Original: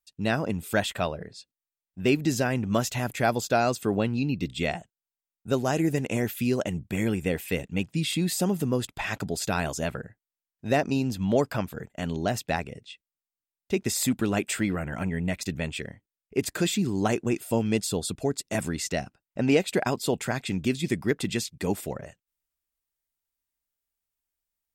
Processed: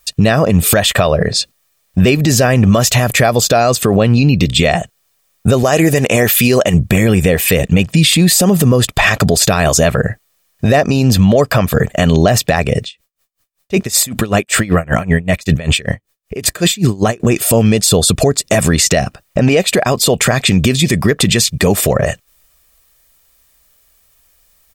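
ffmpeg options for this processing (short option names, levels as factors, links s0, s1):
-filter_complex "[0:a]asettb=1/sr,asplit=3[s0][s1][s2];[s0]atrim=end=5.634[s3];[s1]atrim=start=5.63:end=6.74,asetpts=PTS-STARTPTS,afade=t=in:d=0.004:c=qsin,afade=t=out:st=1.106:d=0.004:c=qsin,lowshelf=f=270:g=-8.5[s4];[s2]atrim=start=6.736[s5];[s3][s4]acrossfade=d=0.004:c1=hsin:c2=qsin[s6];[s6][s5]acrossfade=d=0.004:c1=qsin:c2=hsin,asettb=1/sr,asplit=3[s7][s8][s9];[s7]atrim=end=12.844[s10];[s8]atrim=start=12.84:end=17.2,asetpts=PTS-STARTPTS,afade=t=in:d=0.004:c=qsin,afade=t=out:st=4.356:d=0.004:c=qsin,aeval=exprs='val(0)*pow(10,-30*(0.5-0.5*cos(2*PI*5.2*n/s))/20)':c=same[s11];[s9]atrim=start=17.196[s12];[s10][s11]acrossfade=d=0.004:c1=hsin:c2=qsin[s13];[s13][s12]acrossfade=d=0.004:c1=qsin:c2=hsin,aecho=1:1:1.7:0.42,acompressor=threshold=0.0178:ratio=6,alimiter=level_in=39.8:limit=0.891:release=50:level=0:latency=1,volume=0.891"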